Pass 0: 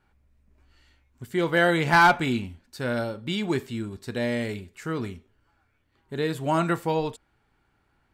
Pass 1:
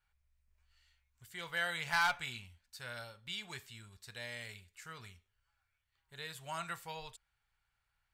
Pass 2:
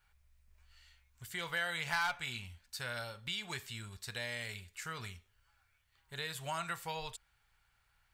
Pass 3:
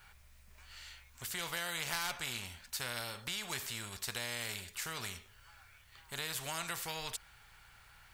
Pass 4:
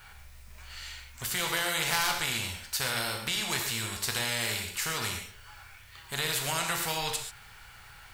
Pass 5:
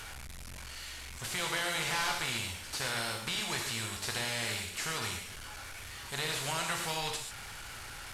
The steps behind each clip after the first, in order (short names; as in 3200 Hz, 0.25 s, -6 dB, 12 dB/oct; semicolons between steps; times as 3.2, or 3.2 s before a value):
passive tone stack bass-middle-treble 10-0-10; gain -6 dB
compressor 2:1, threshold -48 dBFS, peak gain reduction 12 dB; gain +8.5 dB
spectral compressor 2:1
non-linear reverb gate 0.16 s flat, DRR 3 dB; gain +7.5 dB
delta modulation 64 kbps, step -35.5 dBFS; gain -3 dB